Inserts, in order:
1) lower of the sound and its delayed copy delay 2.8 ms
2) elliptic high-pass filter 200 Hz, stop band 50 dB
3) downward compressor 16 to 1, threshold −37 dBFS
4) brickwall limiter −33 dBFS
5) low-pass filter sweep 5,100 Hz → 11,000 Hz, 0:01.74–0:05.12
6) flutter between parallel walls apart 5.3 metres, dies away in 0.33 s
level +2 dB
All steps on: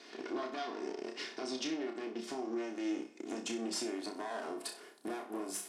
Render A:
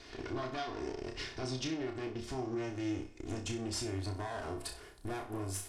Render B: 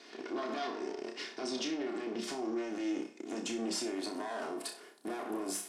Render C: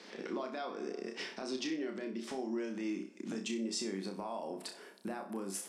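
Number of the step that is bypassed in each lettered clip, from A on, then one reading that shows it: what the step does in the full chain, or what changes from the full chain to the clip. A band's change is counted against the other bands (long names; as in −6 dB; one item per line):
2, change in crest factor −1.5 dB
3, average gain reduction 11.0 dB
1, 250 Hz band +1.5 dB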